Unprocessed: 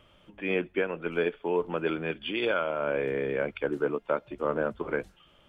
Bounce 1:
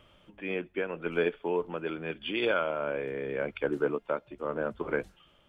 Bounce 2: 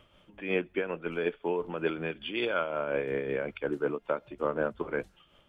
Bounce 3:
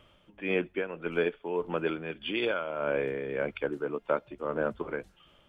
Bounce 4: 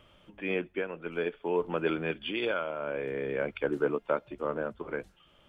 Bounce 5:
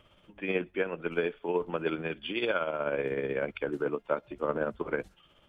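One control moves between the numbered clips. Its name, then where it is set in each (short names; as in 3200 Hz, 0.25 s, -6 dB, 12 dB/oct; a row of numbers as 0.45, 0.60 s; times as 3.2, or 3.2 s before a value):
tremolo, rate: 0.8, 5.4, 1.7, 0.52, 16 Hz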